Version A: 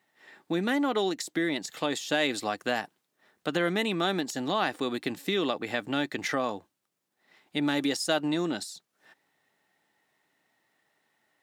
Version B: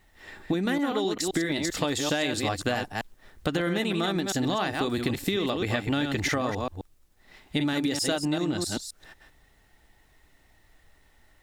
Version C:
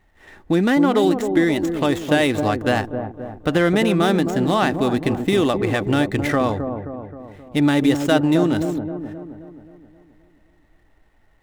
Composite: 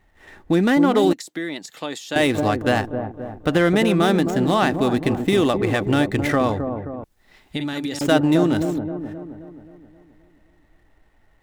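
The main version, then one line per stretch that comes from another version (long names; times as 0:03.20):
C
0:01.13–0:02.16: punch in from A
0:07.04–0:08.01: punch in from B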